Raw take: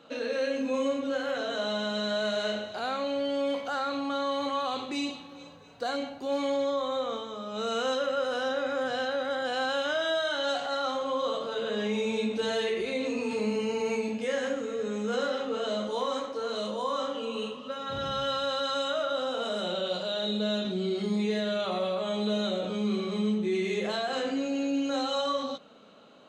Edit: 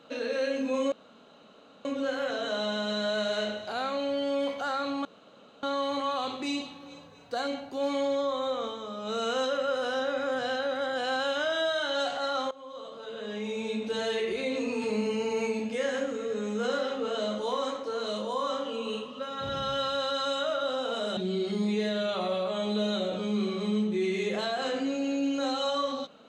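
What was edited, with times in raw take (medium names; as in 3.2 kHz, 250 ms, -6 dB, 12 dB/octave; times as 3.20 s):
0.92 s: insert room tone 0.93 s
4.12 s: insert room tone 0.58 s
11.00–12.83 s: fade in linear, from -19 dB
19.66–20.68 s: delete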